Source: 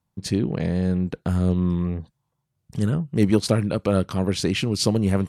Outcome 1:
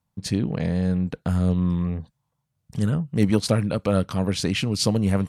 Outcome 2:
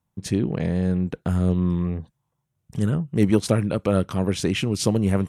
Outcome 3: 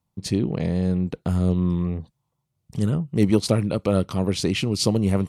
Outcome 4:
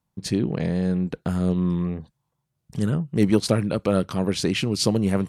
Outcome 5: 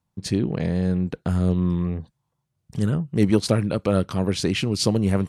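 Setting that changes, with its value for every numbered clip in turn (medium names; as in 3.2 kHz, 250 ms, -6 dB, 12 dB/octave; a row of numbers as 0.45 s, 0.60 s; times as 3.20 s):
peaking EQ, frequency: 360 Hz, 4.5 kHz, 1.6 kHz, 91 Hz, 15 kHz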